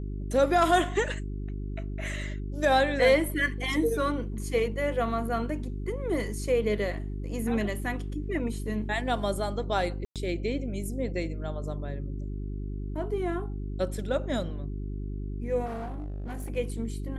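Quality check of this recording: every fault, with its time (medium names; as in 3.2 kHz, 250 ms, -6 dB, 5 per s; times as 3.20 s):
hum 50 Hz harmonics 8 -34 dBFS
10.05–10.16 s: dropout 107 ms
15.65–16.51 s: clipped -32 dBFS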